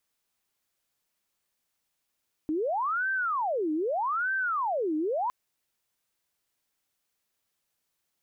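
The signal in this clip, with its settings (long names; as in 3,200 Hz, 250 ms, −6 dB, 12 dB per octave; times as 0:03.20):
siren wail 305–1,560 Hz 0.81 per second sine −25.5 dBFS 2.81 s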